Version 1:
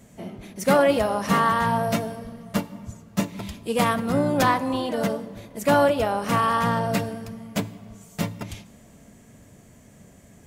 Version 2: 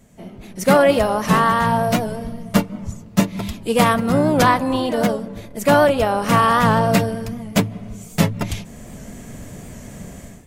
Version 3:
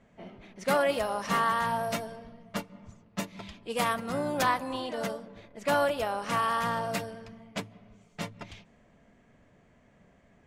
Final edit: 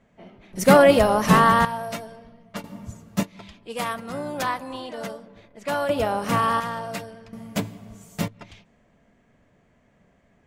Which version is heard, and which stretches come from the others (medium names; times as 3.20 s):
3
0.53–1.65 s: from 2
2.64–3.23 s: from 1
5.89–6.60 s: from 1
7.33–8.28 s: from 1